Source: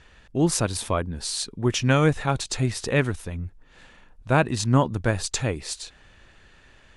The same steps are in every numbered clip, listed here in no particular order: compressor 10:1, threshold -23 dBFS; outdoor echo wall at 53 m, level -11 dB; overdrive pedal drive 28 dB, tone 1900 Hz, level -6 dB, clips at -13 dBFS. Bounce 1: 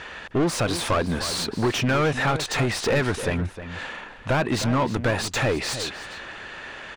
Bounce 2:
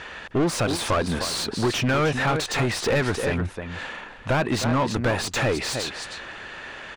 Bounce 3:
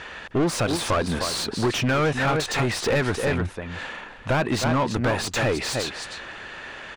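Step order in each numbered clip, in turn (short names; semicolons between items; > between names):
compressor > overdrive pedal > outdoor echo; compressor > outdoor echo > overdrive pedal; outdoor echo > compressor > overdrive pedal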